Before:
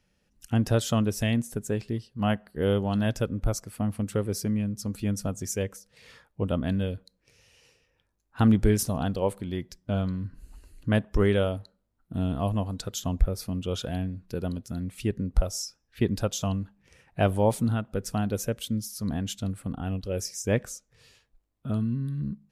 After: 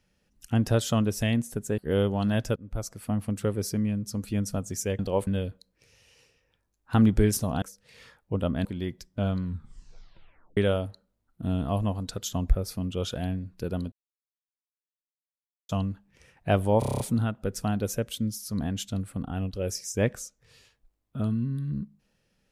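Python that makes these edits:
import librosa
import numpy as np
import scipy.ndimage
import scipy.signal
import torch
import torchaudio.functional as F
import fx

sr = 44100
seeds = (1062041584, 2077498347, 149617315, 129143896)

y = fx.edit(x, sr, fx.cut(start_s=1.78, length_s=0.71),
    fx.fade_in_from(start_s=3.27, length_s=0.47, floor_db=-21.5),
    fx.swap(start_s=5.7, length_s=1.03, other_s=9.08, other_length_s=0.28),
    fx.tape_stop(start_s=10.14, length_s=1.14),
    fx.silence(start_s=14.63, length_s=1.77),
    fx.stutter(start_s=17.5, slice_s=0.03, count=8), tone=tone)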